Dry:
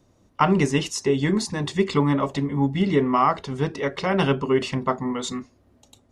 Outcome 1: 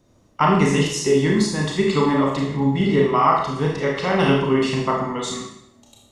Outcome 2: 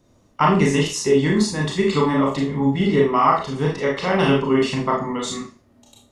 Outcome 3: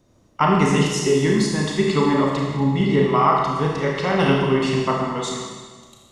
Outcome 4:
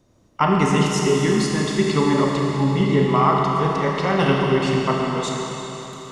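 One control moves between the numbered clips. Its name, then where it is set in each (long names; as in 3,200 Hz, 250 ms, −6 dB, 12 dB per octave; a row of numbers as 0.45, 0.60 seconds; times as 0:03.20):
four-comb reverb, RT60: 0.73, 0.34, 1.5, 4 seconds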